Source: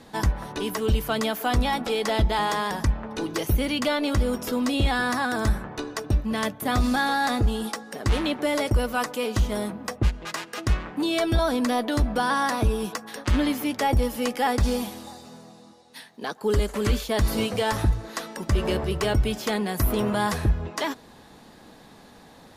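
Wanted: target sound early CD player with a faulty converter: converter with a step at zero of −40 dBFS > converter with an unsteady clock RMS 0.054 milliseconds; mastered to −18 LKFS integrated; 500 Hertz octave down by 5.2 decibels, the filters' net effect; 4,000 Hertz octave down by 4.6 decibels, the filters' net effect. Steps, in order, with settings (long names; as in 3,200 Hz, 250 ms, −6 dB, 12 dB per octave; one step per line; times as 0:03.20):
parametric band 500 Hz −6.5 dB
parametric band 4,000 Hz −6 dB
converter with a step at zero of −40 dBFS
converter with an unsteady clock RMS 0.054 ms
level +8.5 dB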